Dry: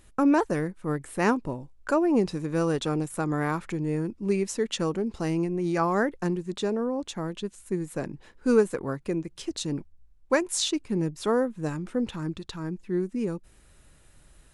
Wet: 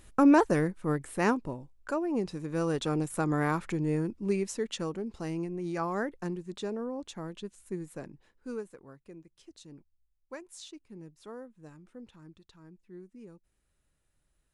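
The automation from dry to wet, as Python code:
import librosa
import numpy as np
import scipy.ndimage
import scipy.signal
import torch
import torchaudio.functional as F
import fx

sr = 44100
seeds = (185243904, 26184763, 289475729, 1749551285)

y = fx.gain(x, sr, db=fx.line((0.66, 1.0), (2.07, -8.5), (3.12, -1.0), (3.92, -1.0), (4.95, -7.5), (7.8, -7.5), (8.77, -20.0)))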